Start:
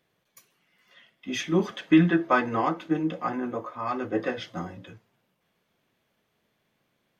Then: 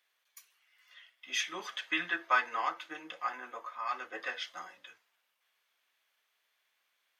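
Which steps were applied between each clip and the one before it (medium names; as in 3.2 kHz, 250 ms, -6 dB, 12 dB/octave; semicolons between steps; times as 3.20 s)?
high-pass 1.3 kHz 12 dB/octave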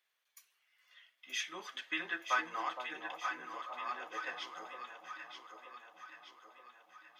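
echo whose repeats swap between lows and highs 463 ms, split 910 Hz, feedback 73%, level -4.5 dB; trim -5 dB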